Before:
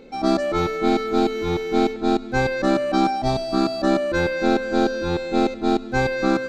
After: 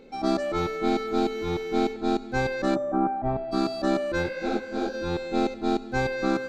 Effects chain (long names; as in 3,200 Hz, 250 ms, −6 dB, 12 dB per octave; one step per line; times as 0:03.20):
0:02.74–0:03.51: low-pass filter 1,100 Hz → 2,200 Hz 24 dB per octave
tuned comb filter 400 Hz, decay 0.85 s, mix 70%
0:04.22–0:04.93: micro pitch shift up and down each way 47 cents → 58 cents
level +5 dB